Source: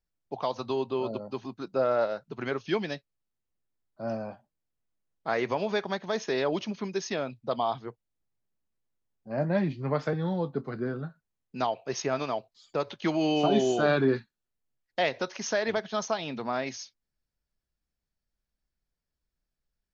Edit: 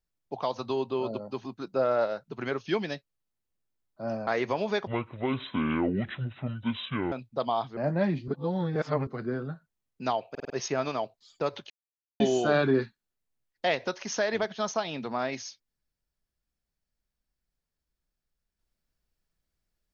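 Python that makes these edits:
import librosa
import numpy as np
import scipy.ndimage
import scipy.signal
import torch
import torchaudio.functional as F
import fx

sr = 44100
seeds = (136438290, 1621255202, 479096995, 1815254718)

y = fx.edit(x, sr, fx.cut(start_s=4.27, length_s=1.01),
    fx.speed_span(start_s=5.88, length_s=1.35, speed=0.6),
    fx.cut(start_s=7.88, length_s=1.43),
    fx.reverse_span(start_s=9.82, length_s=0.79),
    fx.stutter(start_s=11.84, slice_s=0.05, count=5),
    fx.silence(start_s=13.04, length_s=0.5), tone=tone)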